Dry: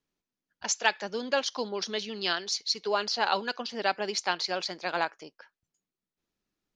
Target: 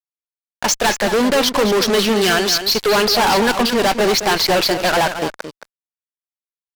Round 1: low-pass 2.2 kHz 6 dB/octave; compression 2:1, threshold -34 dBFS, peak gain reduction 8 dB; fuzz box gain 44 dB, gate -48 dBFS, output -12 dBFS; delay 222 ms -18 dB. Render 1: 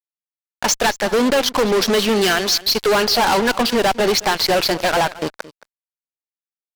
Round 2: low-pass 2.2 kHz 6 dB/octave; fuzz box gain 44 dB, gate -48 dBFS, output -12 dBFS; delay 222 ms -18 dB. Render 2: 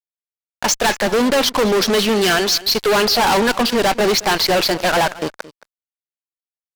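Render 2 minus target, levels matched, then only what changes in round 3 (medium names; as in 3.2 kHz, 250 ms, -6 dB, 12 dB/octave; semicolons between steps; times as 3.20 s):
echo-to-direct -8.5 dB
change: delay 222 ms -9.5 dB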